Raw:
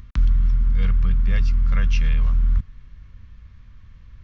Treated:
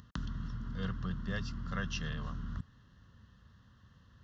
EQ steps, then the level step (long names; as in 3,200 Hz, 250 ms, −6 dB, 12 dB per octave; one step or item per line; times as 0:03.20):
high-pass filter 140 Hz 12 dB per octave
Butterworth band-reject 2,300 Hz, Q 2.7
−4.0 dB